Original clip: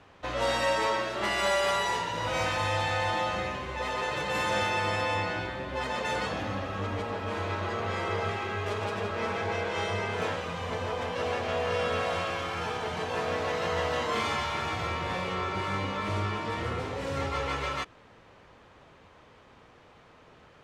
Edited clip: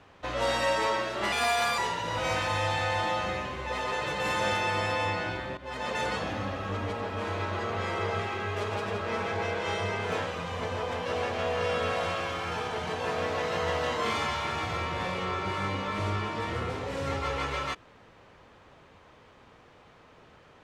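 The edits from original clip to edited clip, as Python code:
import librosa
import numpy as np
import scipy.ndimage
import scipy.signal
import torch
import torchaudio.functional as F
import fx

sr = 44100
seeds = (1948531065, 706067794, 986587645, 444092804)

y = fx.edit(x, sr, fx.speed_span(start_s=1.32, length_s=0.56, speed=1.21),
    fx.fade_in_from(start_s=5.67, length_s=0.33, floor_db=-13.5), tone=tone)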